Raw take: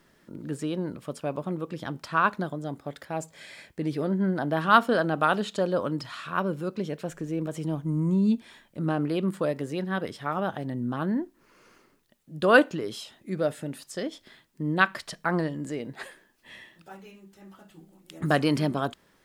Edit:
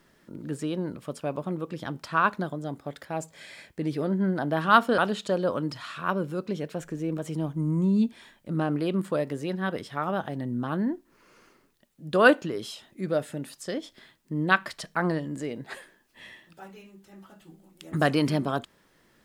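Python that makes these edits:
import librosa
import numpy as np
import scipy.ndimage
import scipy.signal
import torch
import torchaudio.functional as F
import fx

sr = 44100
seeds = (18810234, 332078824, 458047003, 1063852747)

y = fx.edit(x, sr, fx.cut(start_s=4.98, length_s=0.29), tone=tone)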